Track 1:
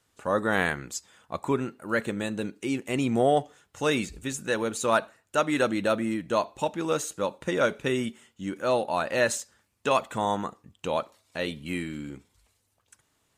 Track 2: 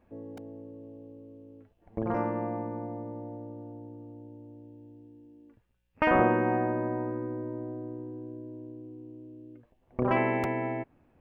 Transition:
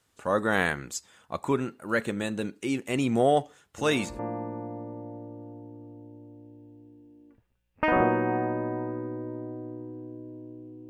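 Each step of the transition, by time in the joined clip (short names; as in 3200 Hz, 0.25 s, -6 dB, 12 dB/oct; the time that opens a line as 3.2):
track 1
3.77 add track 2 from 1.96 s 0.42 s -11 dB
4.19 switch to track 2 from 2.38 s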